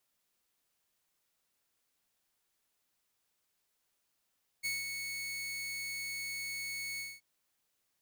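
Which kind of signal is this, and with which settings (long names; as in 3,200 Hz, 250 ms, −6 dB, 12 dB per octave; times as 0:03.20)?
note with an ADSR envelope saw 2,210 Hz, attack 25 ms, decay 178 ms, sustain −5.5 dB, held 2.36 s, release 216 ms −29.5 dBFS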